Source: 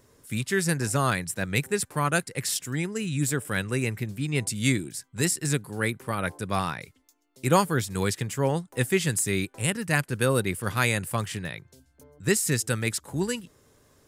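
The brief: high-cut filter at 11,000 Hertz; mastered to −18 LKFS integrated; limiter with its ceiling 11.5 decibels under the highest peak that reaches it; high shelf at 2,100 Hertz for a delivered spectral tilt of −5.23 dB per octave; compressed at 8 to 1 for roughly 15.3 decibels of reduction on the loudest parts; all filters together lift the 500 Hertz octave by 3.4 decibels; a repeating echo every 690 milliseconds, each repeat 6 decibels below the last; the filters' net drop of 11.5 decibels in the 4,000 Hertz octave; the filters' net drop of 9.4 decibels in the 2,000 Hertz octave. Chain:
low-pass filter 11,000 Hz
parametric band 500 Hz +5 dB
parametric band 2,000 Hz −7.5 dB
high-shelf EQ 2,100 Hz −6.5 dB
parametric band 4,000 Hz −6 dB
downward compressor 8 to 1, threshold −29 dBFS
brickwall limiter −29.5 dBFS
repeating echo 690 ms, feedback 50%, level −6 dB
level +21 dB

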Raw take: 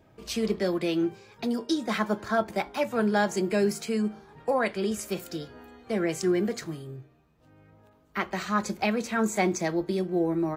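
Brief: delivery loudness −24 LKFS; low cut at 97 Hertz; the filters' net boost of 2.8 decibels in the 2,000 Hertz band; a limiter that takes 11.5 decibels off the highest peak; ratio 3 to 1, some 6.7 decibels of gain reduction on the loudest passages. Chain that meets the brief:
high-pass filter 97 Hz
parametric band 2,000 Hz +3.5 dB
downward compressor 3 to 1, threshold −29 dBFS
level +13.5 dB
brickwall limiter −14.5 dBFS

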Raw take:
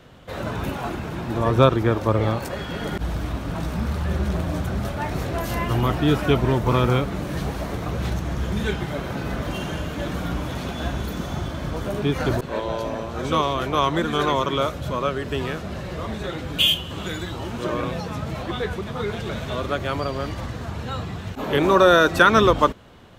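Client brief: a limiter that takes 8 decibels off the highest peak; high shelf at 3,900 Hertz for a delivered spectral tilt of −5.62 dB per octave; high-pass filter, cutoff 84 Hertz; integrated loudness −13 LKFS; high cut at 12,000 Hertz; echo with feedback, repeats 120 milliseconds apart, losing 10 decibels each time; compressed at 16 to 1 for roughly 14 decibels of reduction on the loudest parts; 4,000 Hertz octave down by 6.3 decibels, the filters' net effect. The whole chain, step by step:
high-pass filter 84 Hz
low-pass filter 12,000 Hz
high-shelf EQ 3,900 Hz −5.5 dB
parametric band 4,000 Hz −5.5 dB
downward compressor 16 to 1, threshold −24 dBFS
brickwall limiter −21.5 dBFS
repeating echo 120 ms, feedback 32%, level −10 dB
level +18 dB

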